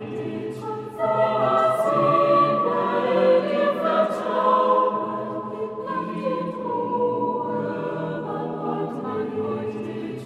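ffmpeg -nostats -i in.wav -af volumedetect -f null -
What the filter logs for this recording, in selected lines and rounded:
mean_volume: -22.7 dB
max_volume: -7.3 dB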